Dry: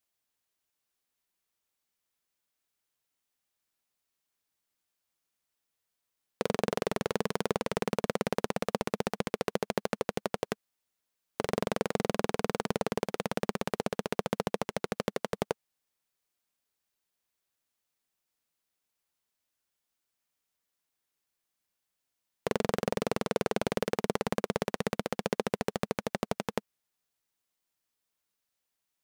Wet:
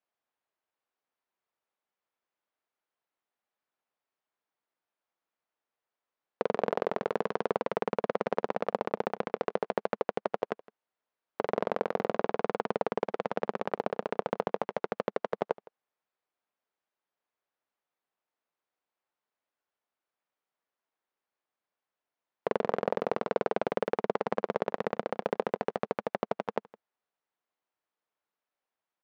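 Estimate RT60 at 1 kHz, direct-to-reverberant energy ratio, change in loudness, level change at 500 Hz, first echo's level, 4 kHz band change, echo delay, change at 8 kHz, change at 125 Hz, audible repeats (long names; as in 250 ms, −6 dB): no reverb audible, no reverb audible, +0.5 dB, +2.0 dB, −22.0 dB, −9.0 dB, 163 ms, below −15 dB, −7.0 dB, 1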